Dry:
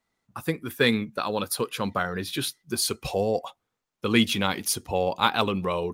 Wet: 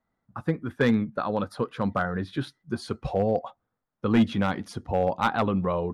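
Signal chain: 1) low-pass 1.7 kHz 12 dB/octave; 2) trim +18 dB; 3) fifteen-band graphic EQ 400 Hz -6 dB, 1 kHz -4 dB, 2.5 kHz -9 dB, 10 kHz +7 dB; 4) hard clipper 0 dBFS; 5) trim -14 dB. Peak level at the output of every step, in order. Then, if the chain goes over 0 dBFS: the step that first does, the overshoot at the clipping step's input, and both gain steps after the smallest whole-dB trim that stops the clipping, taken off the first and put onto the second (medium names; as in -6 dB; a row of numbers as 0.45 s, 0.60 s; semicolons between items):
-8.5 dBFS, +9.5 dBFS, +7.0 dBFS, 0.0 dBFS, -14.0 dBFS; step 2, 7.0 dB; step 2 +11 dB, step 5 -7 dB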